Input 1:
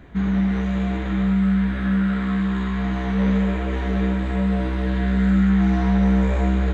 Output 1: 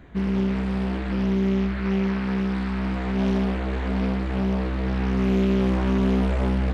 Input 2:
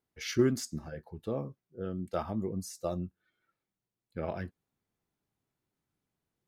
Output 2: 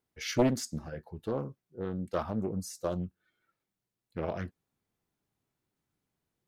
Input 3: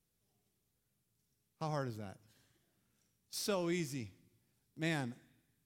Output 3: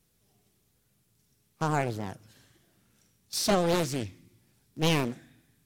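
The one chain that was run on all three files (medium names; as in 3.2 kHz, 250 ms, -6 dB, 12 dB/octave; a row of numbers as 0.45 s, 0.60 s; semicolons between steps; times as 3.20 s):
loudspeaker Doppler distortion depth 0.98 ms; peak normalisation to -12 dBFS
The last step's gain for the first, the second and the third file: -2.5 dB, +1.5 dB, +11.5 dB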